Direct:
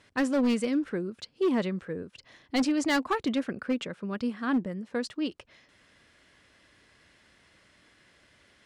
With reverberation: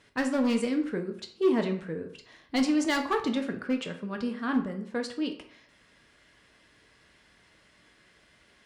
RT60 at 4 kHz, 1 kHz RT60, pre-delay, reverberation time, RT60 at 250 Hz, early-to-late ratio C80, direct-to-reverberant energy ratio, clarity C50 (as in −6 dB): 0.40 s, 0.60 s, 4 ms, 0.55 s, 0.55 s, 13.5 dB, 4.0 dB, 9.5 dB